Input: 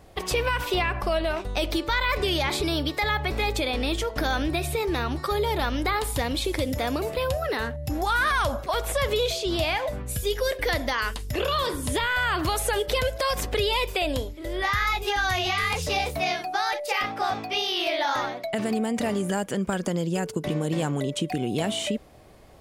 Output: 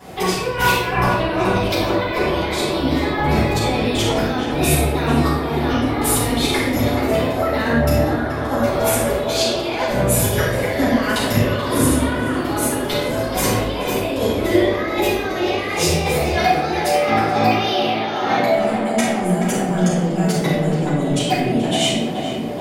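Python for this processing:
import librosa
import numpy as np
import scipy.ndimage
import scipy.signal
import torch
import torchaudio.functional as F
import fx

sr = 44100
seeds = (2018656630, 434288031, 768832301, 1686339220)

p1 = scipy.signal.sosfilt(scipy.signal.butter(2, 130.0, 'highpass', fs=sr, output='sos'), x)
p2 = fx.over_compress(p1, sr, threshold_db=-32.0, ratio=-0.5)
p3 = p2 + fx.echo_tape(p2, sr, ms=429, feedback_pct=88, wet_db=-6.0, lp_hz=1800.0, drive_db=7.0, wow_cents=17, dry=0)
p4 = fx.room_shoebox(p3, sr, seeds[0], volume_m3=310.0, walls='mixed', distance_m=7.4)
y = p4 * 10.0 ** (-4.0 / 20.0)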